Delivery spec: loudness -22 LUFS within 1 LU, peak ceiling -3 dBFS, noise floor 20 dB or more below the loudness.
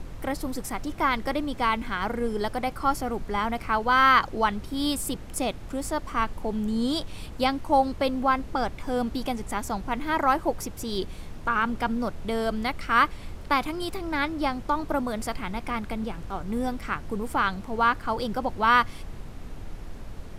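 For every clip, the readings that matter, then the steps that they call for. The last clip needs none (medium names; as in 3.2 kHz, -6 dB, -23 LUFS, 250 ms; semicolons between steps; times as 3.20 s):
noise floor -40 dBFS; noise floor target -47 dBFS; loudness -27.0 LUFS; peak level -6.5 dBFS; loudness target -22.0 LUFS
-> noise print and reduce 7 dB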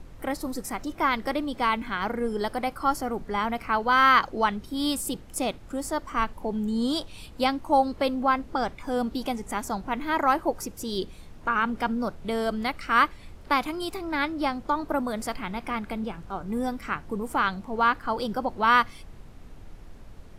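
noise floor -46 dBFS; noise floor target -47 dBFS
-> noise print and reduce 6 dB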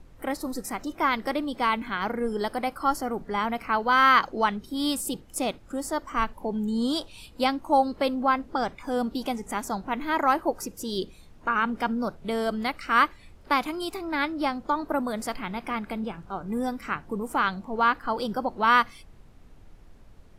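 noise floor -51 dBFS; loudness -27.0 LUFS; peak level -7.0 dBFS; loudness target -22.0 LUFS
-> trim +5 dB; peak limiter -3 dBFS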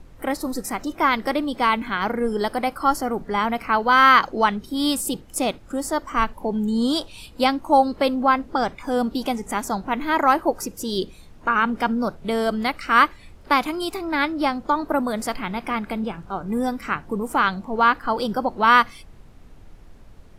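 loudness -22.0 LUFS; peak level -3.0 dBFS; noise floor -46 dBFS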